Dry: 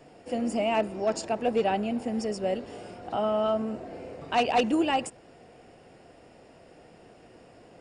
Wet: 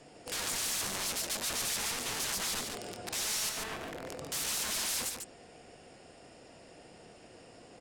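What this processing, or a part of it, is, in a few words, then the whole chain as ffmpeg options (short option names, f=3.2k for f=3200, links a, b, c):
overflowing digital effects unit: -filter_complex "[0:a]aeval=exprs='(mod(42.2*val(0)+1,2)-1)/42.2':c=same,lowpass=8k,asettb=1/sr,asplit=3[a][b][c];[a]atrim=end=3.494[d];[b]atrim=start=3.49:end=4.06,asetpts=PTS-STARTPTS,afade=t=in:d=0.004:c=qsin,afade=t=out:st=0.566:d=0.004:c=qsin,acrossover=split=3100[e][f];[f]acompressor=threshold=-57dB:ratio=4:attack=1:release=60[g];[e][g]amix=inputs=2:normalize=0[h];[c]atrim=start=4.056[i];[d][h]acrossfade=d=0.004:c1=hsin:c2=qsin[j];[j][i]acrossfade=d=0.004:c1=qsin:c2=hsin,aemphasis=mode=production:type=75fm,aecho=1:1:144:0.531,volume=-2.5dB"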